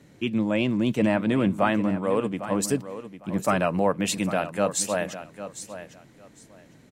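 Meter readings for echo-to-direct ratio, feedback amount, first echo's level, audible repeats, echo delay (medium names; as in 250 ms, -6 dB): -12.5 dB, 19%, -12.5 dB, 2, 803 ms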